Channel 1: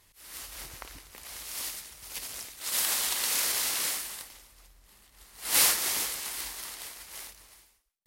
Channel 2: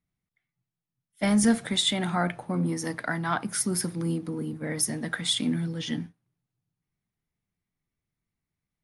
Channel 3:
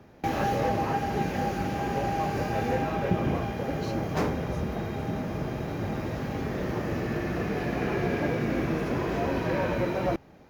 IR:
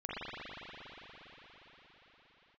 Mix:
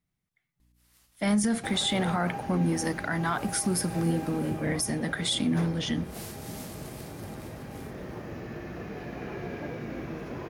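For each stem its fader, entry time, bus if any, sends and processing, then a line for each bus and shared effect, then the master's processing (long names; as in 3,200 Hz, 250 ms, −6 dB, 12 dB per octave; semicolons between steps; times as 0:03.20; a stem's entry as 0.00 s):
−13.5 dB, 0.60 s, no send, mains hum 60 Hz, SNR 15 dB; automatic ducking −12 dB, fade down 0.75 s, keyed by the second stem
+2.0 dB, 0.00 s, no send, no processing
−9.0 dB, 1.40 s, no send, no processing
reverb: not used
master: brickwall limiter −18 dBFS, peak gain reduction 9.5 dB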